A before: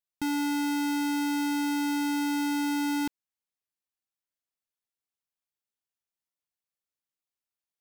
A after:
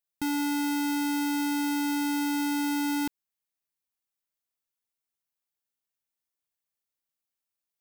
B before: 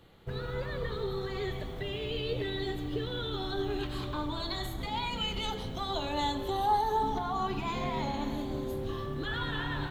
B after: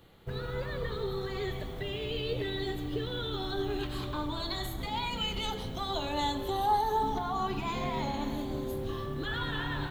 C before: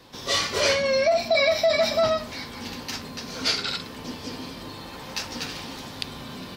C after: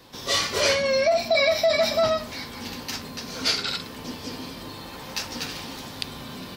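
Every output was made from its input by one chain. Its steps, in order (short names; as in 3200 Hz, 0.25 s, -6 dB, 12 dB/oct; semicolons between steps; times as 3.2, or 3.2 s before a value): high shelf 11000 Hz +7 dB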